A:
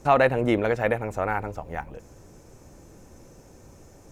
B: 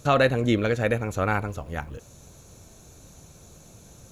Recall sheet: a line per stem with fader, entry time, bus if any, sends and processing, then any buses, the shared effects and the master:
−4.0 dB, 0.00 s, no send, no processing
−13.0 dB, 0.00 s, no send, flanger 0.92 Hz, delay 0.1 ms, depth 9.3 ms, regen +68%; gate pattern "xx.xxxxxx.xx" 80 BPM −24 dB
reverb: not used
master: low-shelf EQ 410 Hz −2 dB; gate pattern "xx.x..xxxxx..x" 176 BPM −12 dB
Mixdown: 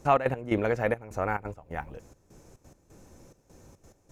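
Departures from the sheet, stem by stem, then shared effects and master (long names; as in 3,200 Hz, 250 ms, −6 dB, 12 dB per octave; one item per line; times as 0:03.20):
stem B: missing gate pattern "xx.xxxxxx.xx" 80 BPM −24 dB
master: missing low-shelf EQ 410 Hz −2 dB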